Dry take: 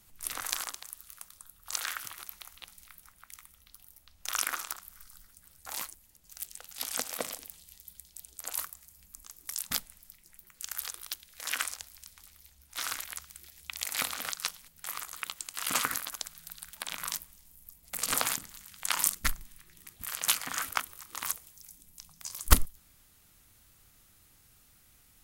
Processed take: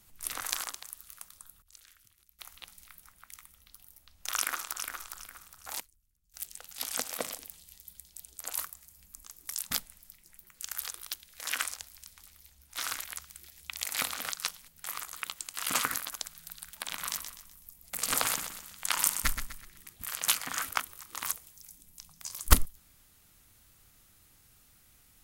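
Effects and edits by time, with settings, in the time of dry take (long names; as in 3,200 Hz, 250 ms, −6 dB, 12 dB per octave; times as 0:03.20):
0:01.62–0:02.39: guitar amp tone stack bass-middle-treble 10-0-1
0:04.35–0:05.01: delay throw 410 ms, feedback 30%, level −6.5 dB
0:05.80–0:06.34: guitar amp tone stack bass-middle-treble 10-0-1
0:16.72–0:19.83: repeating echo 125 ms, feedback 39%, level −8.5 dB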